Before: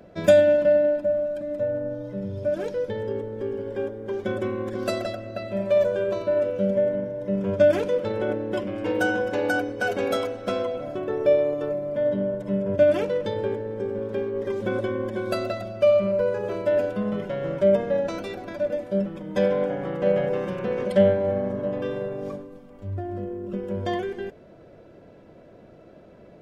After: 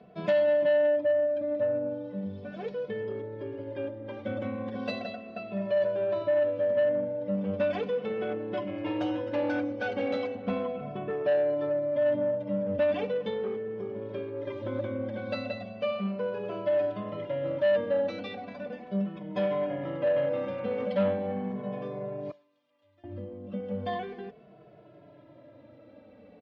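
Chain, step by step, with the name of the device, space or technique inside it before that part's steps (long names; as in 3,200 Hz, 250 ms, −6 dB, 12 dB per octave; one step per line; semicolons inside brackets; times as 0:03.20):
0:10.35–0:11.10: bass and treble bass +9 dB, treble −9 dB
comb filter 6.8 ms, depth 30%
0:22.31–0:23.04: first difference
barber-pole flanger into a guitar amplifier (barber-pole flanger 2.3 ms −0.37 Hz; soft clipping −19.5 dBFS, distortion −12 dB; loudspeaker in its box 94–4,100 Hz, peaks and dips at 160 Hz −7 dB, 220 Hz +4 dB, 380 Hz −8 dB, 1,500 Hz −6 dB)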